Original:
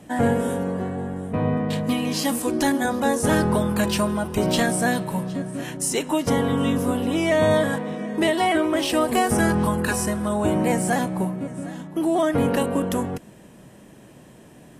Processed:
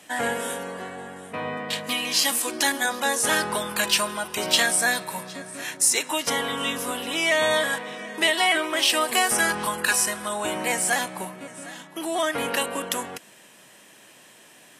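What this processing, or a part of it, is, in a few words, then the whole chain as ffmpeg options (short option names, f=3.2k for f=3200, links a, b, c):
filter by subtraction: -filter_complex "[0:a]asplit=2[a][b];[b]lowpass=2.8k,volume=-1[c];[a][c]amix=inputs=2:normalize=0,asettb=1/sr,asplit=3[d][e][f];[d]atrim=end=4.774[g];[e]atrim=start=4.77:end=6.09,asetpts=PTS-STARTPTS,afade=t=in:d=0.004:c=qsin,afade=t=out:st=1.316:d=0.004:c=qsin,bandreject=f=3k:w=7.1[h];[f]atrim=start=6.086[i];[g][h]acrossfade=d=0.004:c1=hsin:c2=qsin[j];[j][i]acrossfade=d=0.004:c1=qsin:c2=hsin,volume=5.5dB"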